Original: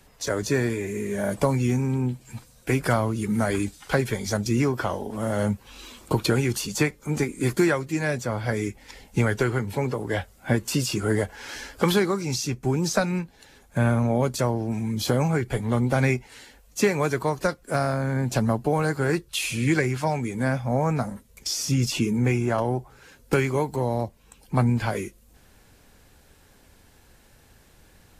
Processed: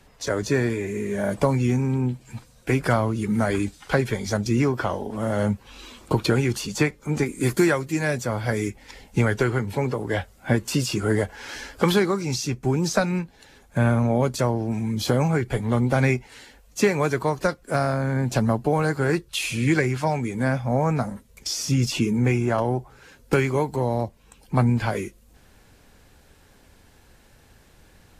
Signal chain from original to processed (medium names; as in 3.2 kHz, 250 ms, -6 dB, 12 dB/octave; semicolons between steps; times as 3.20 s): treble shelf 8 kHz -9 dB, from 7.26 s +3 dB, from 8.70 s -5 dB; trim +1.5 dB